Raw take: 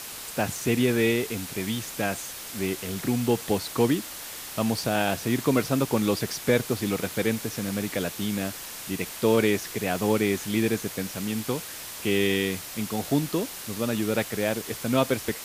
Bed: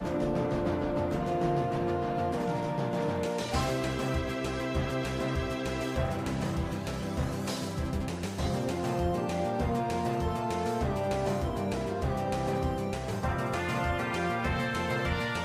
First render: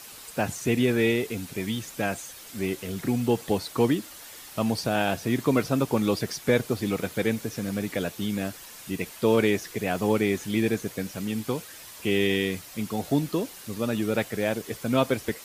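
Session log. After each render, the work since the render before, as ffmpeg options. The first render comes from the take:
-af "afftdn=nr=8:nf=-39"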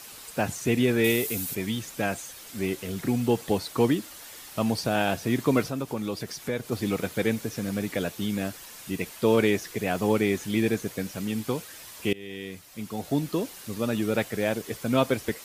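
-filter_complex "[0:a]asettb=1/sr,asplit=3[a][b][c];[a]atrim=end=1.044[d];[b]atrim=start=1.04:end=1.55,asetpts=PTS-STARTPTS,afade=t=in:d=0.004:c=qsin,afade=t=out:st=0.506:d=0.004:c=qsin,aemphasis=mode=production:type=50fm[e];[c]atrim=start=1.546[f];[d][e]acrossfade=d=0.004:c1=hsin:c2=qsin[g];[g][f]acrossfade=d=0.004:c1=qsin:c2=hsin,asplit=3[h][i][j];[h]afade=t=out:st=5.68:d=0.02[k];[i]acompressor=threshold=-38dB:ratio=1.5:attack=3.2:release=140:knee=1:detection=peak,afade=t=in:st=5.68:d=0.02,afade=t=out:st=6.71:d=0.02[l];[j]afade=t=in:st=6.71:d=0.02[m];[k][l][m]amix=inputs=3:normalize=0,asplit=2[n][o];[n]atrim=end=12.13,asetpts=PTS-STARTPTS,afade=t=out:st=12.126:d=0.004:c=hsin:silence=0.0668344[p];[o]atrim=start=12.13,asetpts=PTS-STARTPTS,afade=t=in:d=1.33:silence=0.0668344[q];[p][q]concat=n=2:v=0:a=1"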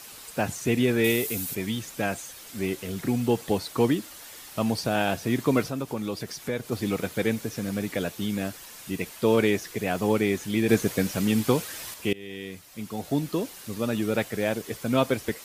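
-filter_complex "[0:a]asplit=3[a][b][c];[a]atrim=end=10.692[d];[b]atrim=start=10.688:end=11.942,asetpts=PTS-STARTPTS,volume=6.5dB[e];[c]atrim=start=11.938[f];[d][e]acrossfade=d=0.004:c1=hsin:c2=hsin[g];[g][f]acrossfade=d=0.004:c1=hsin:c2=hsin"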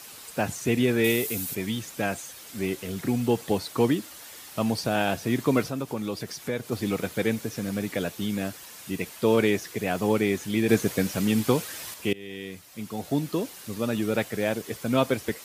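-af "highpass=60"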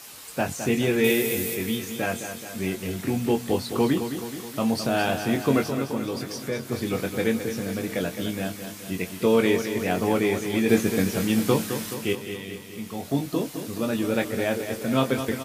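-filter_complex "[0:a]asplit=2[a][b];[b]adelay=22,volume=-6dB[c];[a][c]amix=inputs=2:normalize=0,aecho=1:1:213|426|639|852|1065|1278|1491:0.355|0.209|0.124|0.0729|0.043|0.0254|0.015"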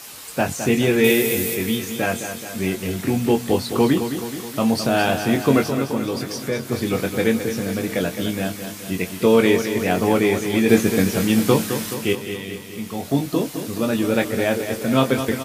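-af "volume=5dB"

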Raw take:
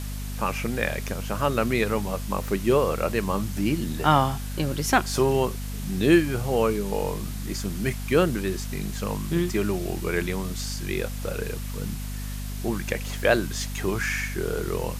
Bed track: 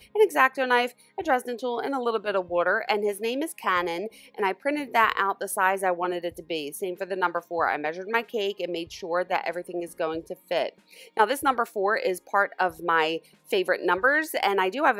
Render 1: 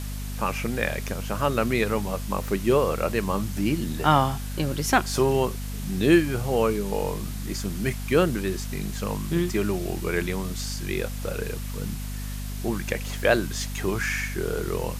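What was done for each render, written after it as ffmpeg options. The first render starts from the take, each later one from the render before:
-af anull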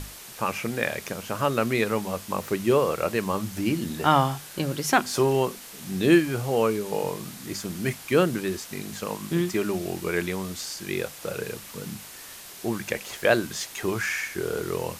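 -af "bandreject=f=50:t=h:w=6,bandreject=f=100:t=h:w=6,bandreject=f=150:t=h:w=6,bandreject=f=200:t=h:w=6,bandreject=f=250:t=h:w=6"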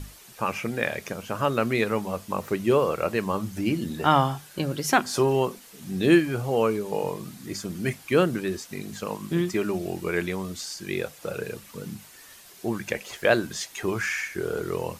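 -af "afftdn=nr=8:nf=-43"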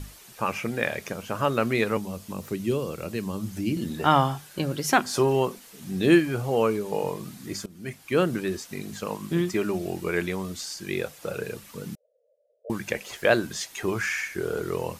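-filter_complex "[0:a]asettb=1/sr,asplit=3[a][b][c];[a]atrim=end=1.974[d];[b]atrim=start=1.97:end=3.77,asetpts=PTS-STARTPTS,afade=t=in:d=0.004:c=qsin,afade=t=out:st=1.796:d=0.004:c=qsin,acrossover=split=360|3000[e][f][g];[f]acompressor=threshold=-48dB:ratio=2:attack=3.2:release=140:knee=2.83:detection=peak[h];[e][h][g]amix=inputs=3:normalize=0[i];[c]atrim=start=3.766[j];[d][i]acrossfade=d=0.004:c1=hsin:c2=qsin[k];[k][j]acrossfade=d=0.004:c1=qsin:c2=hsin,asettb=1/sr,asplit=3[l][m][n];[l]atrim=end=11.954[o];[m]atrim=start=11.95:end=12.7,asetpts=PTS-STARTPTS,afade=t=in:d=0.004:c=qsin,afade=t=out:st=0.746:d=0.004:c=qsin,asuperpass=centerf=540:order=8:qfactor=3.5[p];[n]atrim=start=12.696[q];[o][p]acrossfade=d=0.004:c1=hsin:c2=qsin[r];[r][q]acrossfade=d=0.004:c1=qsin:c2=hsin,asplit=2[s][t];[s]atrim=end=7.66,asetpts=PTS-STARTPTS,afade=t=out:st=7.656:d=0.004:c=hsin:silence=0.112202[u];[t]atrim=start=7.66,asetpts=PTS-STARTPTS,afade=t=in:d=0.68:silence=0.112202[v];[u][v]concat=n=2:v=0:a=1"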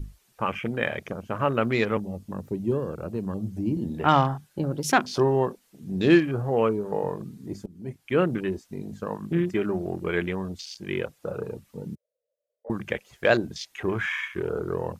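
-af "lowshelf=f=73:g=6,afwtdn=0.0158"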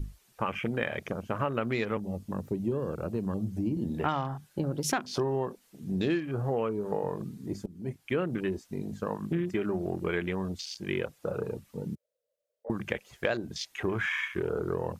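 -af "acompressor=threshold=-26dB:ratio=6"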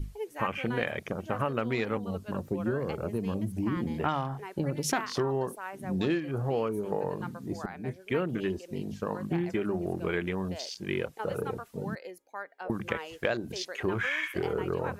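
-filter_complex "[1:a]volume=-17.5dB[a];[0:a][a]amix=inputs=2:normalize=0"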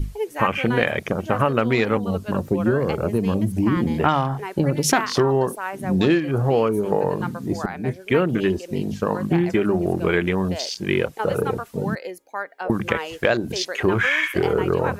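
-af "volume=10.5dB,alimiter=limit=-3dB:level=0:latency=1"

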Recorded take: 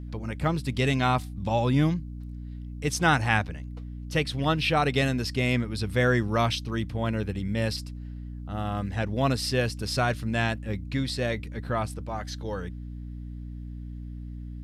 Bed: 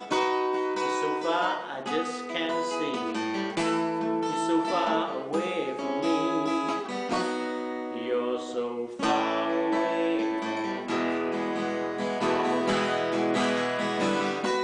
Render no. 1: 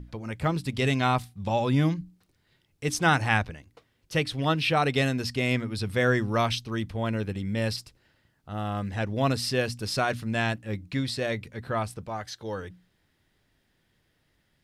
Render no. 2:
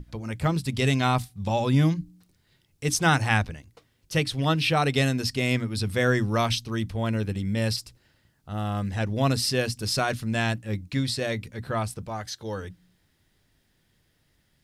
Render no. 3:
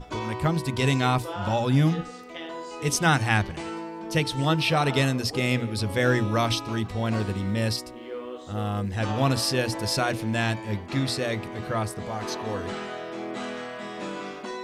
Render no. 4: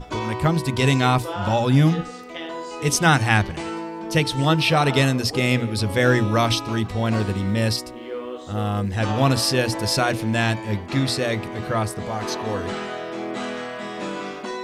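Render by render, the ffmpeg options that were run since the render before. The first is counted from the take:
-af "bandreject=f=60:t=h:w=6,bandreject=f=120:t=h:w=6,bandreject=f=180:t=h:w=6,bandreject=f=240:t=h:w=6,bandreject=f=300:t=h:w=6"
-af "bass=f=250:g=4,treble=f=4k:g=6,bandreject=f=60:t=h:w=6,bandreject=f=120:t=h:w=6,bandreject=f=180:t=h:w=6,bandreject=f=240:t=h:w=6,bandreject=f=300:t=h:w=6"
-filter_complex "[1:a]volume=-8dB[a];[0:a][a]amix=inputs=2:normalize=0"
-af "volume=4.5dB"

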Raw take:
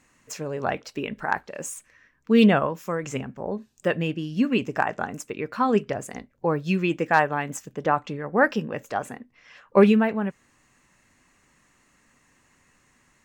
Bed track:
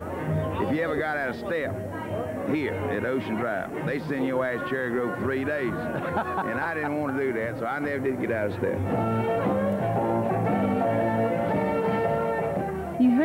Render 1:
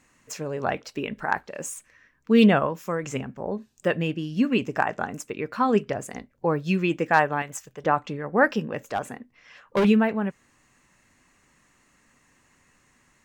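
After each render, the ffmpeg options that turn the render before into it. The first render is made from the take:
-filter_complex "[0:a]asettb=1/sr,asplit=3[a][b][c];[a]atrim=end=7.424[d];[b]atrim=start=7.42:end=7.84,asetpts=PTS-STARTPTS,afade=t=in:d=0.004:c=qsin,afade=t=out:st=0.416:d=0.004:c=qsin,equalizer=f=240:t=o:w=1.5:g=-13.5[e];[c]atrim=start=7.836[f];[d][e]acrossfade=d=0.004:c1=hsin:c2=qsin[g];[g][f]acrossfade=d=0.004:c1=qsin:c2=hsin,asettb=1/sr,asplit=3[h][i][j];[h]atrim=end=8.724[k];[i]atrim=start=8.72:end=9.85,asetpts=PTS-STARTPTS,afade=t=in:d=0.004:c=qsin,afade=t=out:st=1.126:d=0.004:c=qsin,asoftclip=type=hard:threshold=-18dB[l];[j]atrim=start=9.846[m];[k][l]acrossfade=d=0.004:c1=hsin:c2=qsin[n];[n][m]acrossfade=d=0.004:c1=qsin:c2=hsin"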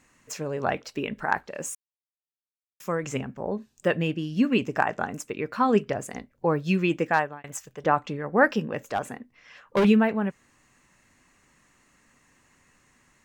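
-filter_complex "[0:a]asplit=4[a][b][c][d];[a]atrim=end=1.75,asetpts=PTS-STARTPTS,afade=t=out:st=1.746:d=0.004:c=hsin[e];[b]atrim=start=1.75:end=2.8,asetpts=PTS-STARTPTS,volume=0[f];[c]atrim=start=2.8:end=7.44,asetpts=PTS-STARTPTS,afade=t=in:d=0.004:c=hsin,afade=t=out:st=4.22:d=0.42[g];[d]atrim=start=7.44,asetpts=PTS-STARTPTS,afade=t=in:d=0.004:c=hsin[h];[e][f][g][h]concat=n=4:v=0:a=1"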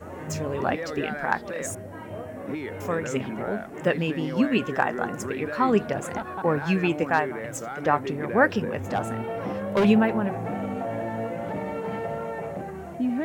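-filter_complex "[1:a]volume=-6dB[a];[0:a][a]amix=inputs=2:normalize=0"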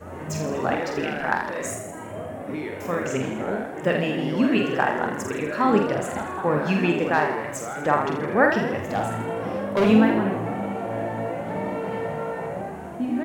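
-filter_complex "[0:a]asplit=2[a][b];[b]adelay=46,volume=-5dB[c];[a][c]amix=inputs=2:normalize=0,asplit=8[d][e][f][g][h][i][j][k];[e]adelay=81,afreqshift=55,volume=-8dB[l];[f]adelay=162,afreqshift=110,volume=-12.9dB[m];[g]adelay=243,afreqshift=165,volume=-17.8dB[n];[h]adelay=324,afreqshift=220,volume=-22.6dB[o];[i]adelay=405,afreqshift=275,volume=-27.5dB[p];[j]adelay=486,afreqshift=330,volume=-32.4dB[q];[k]adelay=567,afreqshift=385,volume=-37.3dB[r];[d][l][m][n][o][p][q][r]amix=inputs=8:normalize=0"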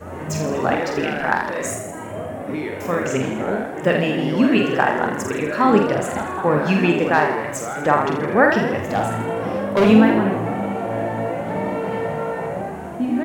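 -af "volume=4.5dB,alimiter=limit=-2dB:level=0:latency=1"

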